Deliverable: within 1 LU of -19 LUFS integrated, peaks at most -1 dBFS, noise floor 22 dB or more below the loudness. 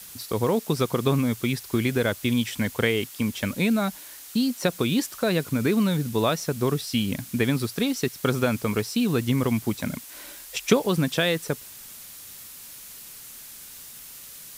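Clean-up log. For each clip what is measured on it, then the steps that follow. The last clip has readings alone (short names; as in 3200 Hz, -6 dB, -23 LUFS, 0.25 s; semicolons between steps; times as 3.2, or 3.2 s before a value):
noise floor -43 dBFS; noise floor target -47 dBFS; loudness -25.0 LUFS; peak -4.5 dBFS; loudness target -19.0 LUFS
-> noise print and reduce 6 dB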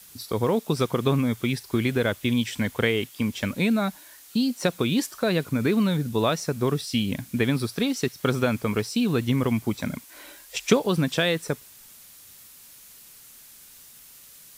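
noise floor -49 dBFS; loudness -25.0 LUFS; peak -4.5 dBFS; loudness target -19.0 LUFS
-> gain +6 dB; limiter -1 dBFS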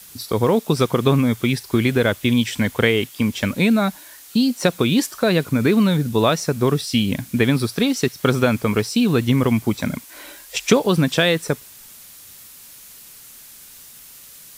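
loudness -19.5 LUFS; peak -1.0 dBFS; noise floor -43 dBFS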